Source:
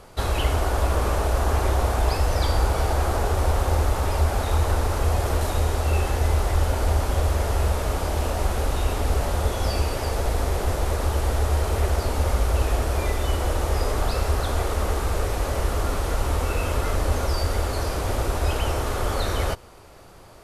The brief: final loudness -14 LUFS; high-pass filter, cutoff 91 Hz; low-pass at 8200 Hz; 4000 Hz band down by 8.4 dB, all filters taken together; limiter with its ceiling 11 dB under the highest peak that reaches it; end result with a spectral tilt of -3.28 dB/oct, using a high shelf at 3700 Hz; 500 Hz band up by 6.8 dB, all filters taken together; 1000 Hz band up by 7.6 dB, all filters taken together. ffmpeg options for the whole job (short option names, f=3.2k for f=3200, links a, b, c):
-af "highpass=91,lowpass=8.2k,equalizer=f=500:t=o:g=6,equalizer=f=1k:t=o:g=8.5,highshelf=f=3.7k:g=-5.5,equalizer=f=4k:t=o:g=-8,volume=13dB,alimiter=limit=-5.5dB:level=0:latency=1"